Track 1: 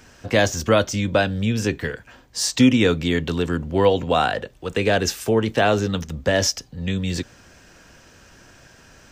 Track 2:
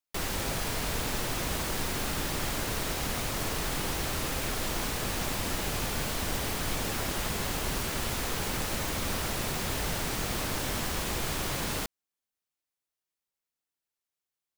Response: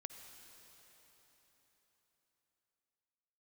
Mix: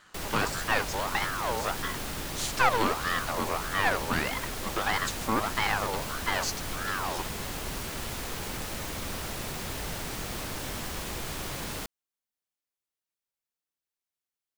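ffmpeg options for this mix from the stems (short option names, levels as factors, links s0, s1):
-filter_complex "[0:a]equalizer=f=320:w=1.2:g=5,aeval=exprs='val(0)*sin(2*PI*1100*n/s+1100*0.4/1.6*sin(2*PI*1.6*n/s))':c=same,volume=0.447[s0];[1:a]volume=0.668[s1];[s0][s1]amix=inputs=2:normalize=0,aeval=exprs='clip(val(0),-1,0.0355)':c=same"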